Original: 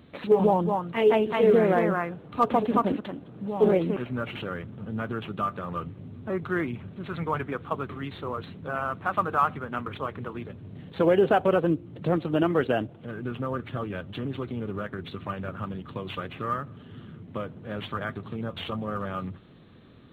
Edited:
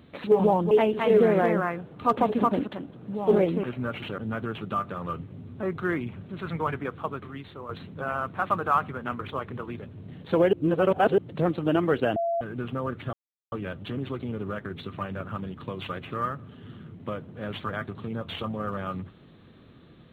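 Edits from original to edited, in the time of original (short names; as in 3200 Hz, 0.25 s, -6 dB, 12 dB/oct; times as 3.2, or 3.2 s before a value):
0.71–1.04 cut
4.51–4.85 cut
7.48–8.36 fade out, to -8.5 dB
11.2–11.85 reverse
12.83–13.08 bleep 678 Hz -23.5 dBFS
13.8 insert silence 0.39 s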